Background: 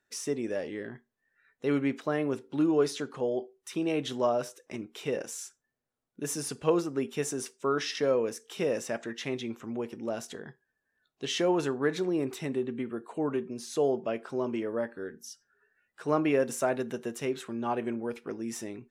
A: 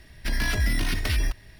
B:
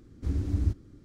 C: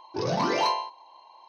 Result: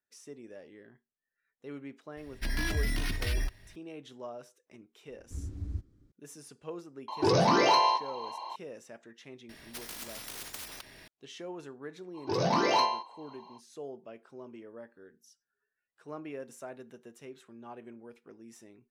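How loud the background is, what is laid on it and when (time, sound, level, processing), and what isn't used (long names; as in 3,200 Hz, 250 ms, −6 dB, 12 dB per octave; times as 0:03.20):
background −15.5 dB
0:02.17: mix in A −6.5 dB
0:05.08: mix in B −13.5 dB + low-shelf EQ 100 Hz +6 dB
0:07.08: mix in C −15.5 dB + boost into a limiter +27 dB
0:09.49: mix in A −9.5 dB + every bin compressed towards the loudest bin 10 to 1
0:12.13: mix in C −1 dB, fades 0.05 s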